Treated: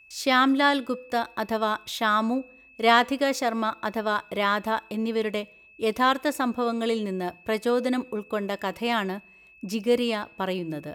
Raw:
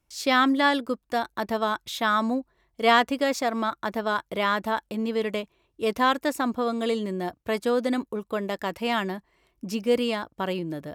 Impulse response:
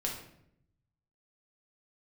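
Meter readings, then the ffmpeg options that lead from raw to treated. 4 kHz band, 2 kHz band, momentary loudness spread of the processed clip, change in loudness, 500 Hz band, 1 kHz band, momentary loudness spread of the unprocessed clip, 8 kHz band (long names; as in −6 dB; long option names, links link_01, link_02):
+0.5 dB, +0.5 dB, 10 LU, +0.5 dB, 0.0 dB, +0.5 dB, 10 LU, +0.5 dB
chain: -filter_complex "[0:a]aeval=exprs='val(0)+0.00251*sin(2*PI*2600*n/s)':channel_layout=same,bandreject=frequency=168.1:width_type=h:width=4,bandreject=frequency=336.2:width_type=h:width=4,bandreject=frequency=504.3:width_type=h:width=4,asplit=2[link_01][link_02];[1:a]atrim=start_sample=2205,lowshelf=frequency=370:gain=-11.5,highshelf=frequency=9500:gain=9[link_03];[link_02][link_03]afir=irnorm=-1:irlink=0,volume=-23dB[link_04];[link_01][link_04]amix=inputs=2:normalize=0"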